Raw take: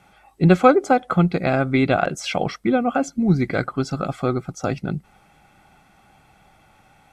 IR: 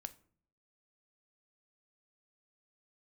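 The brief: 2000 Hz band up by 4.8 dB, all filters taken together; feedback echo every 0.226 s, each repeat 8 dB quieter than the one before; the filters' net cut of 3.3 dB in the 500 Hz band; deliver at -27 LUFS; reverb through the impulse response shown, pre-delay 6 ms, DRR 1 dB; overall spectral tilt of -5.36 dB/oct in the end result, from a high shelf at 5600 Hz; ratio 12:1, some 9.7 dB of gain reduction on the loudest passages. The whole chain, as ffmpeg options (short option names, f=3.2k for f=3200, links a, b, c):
-filter_complex "[0:a]equalizer=f=500:t=o:g=-4.5,equalizer=f=2k:t=o:g=6,highshelf=f=5.6k:g=8,acompressor=threshold=-18dB:ratio=12,aecho=1:1:226|452|678|904|1130:0.398|0.159|0.0637|0.0255|0.0102,asplit=2[a][b];[1:a]atrim=start_sample=2205,adelay=6[c];[b][c]afir=irnorm=-1:irlink=0,volume=3dB[d];[a][d]amix=inputs=2:normalize=0,volume=-5.5dB"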